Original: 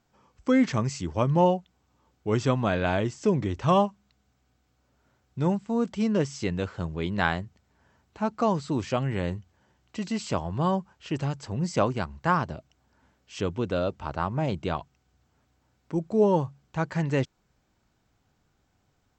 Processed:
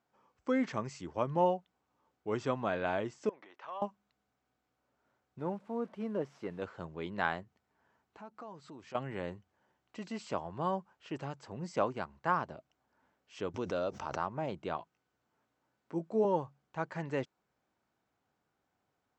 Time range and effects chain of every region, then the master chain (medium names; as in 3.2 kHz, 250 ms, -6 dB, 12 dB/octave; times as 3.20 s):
3.29–3.82 s: compression, threshold -27 dBFS + high-pass 790 Hz + distance through air 170 m
5.39–6.62 s: one-bit delta coder 64 kbps, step -43 dBFS + low-pass 1.3 kHz 6 dB/octave + bass shelf 110 Hz -9 dB
7.43–8.95 s: band-stop 570 Hz, Q 13 + compression 3:1, threshold -41 dBFS
13.54–14.26 s: peaking EQ 5.8 kHz +12.5 dB 0.52 oct + swell ahead of each attack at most 40 dB/s
14.77–16.25 s: high-pass 92 Hz + doubling 18 ms -7 dB
whole clip: high-pass 540 Hz 6 dB/octave; treble shelf 2.4 kHz -12 dB; trim -3 dB